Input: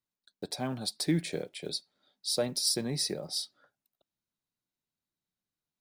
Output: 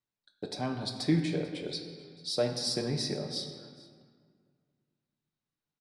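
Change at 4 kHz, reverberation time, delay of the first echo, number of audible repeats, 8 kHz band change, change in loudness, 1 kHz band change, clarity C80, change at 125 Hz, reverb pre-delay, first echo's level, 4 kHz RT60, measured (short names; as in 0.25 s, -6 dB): -2.0 dB, 1.9 s, 0.441 s, 1, -7.5 dB, -0.5 dB, +2.0 dB, 7.5 dB, +3.0 dB, 7 ms, -21.5 dB, 1.3 s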